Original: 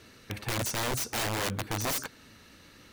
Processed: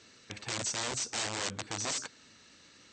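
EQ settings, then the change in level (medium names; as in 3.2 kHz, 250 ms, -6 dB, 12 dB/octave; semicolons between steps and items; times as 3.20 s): high-pass 150 Hz 6 dB/octave; brick-wall FIR low-pass 8.4 kHz; treble shelf 4.2 kHz +11 dB; -6.0 dB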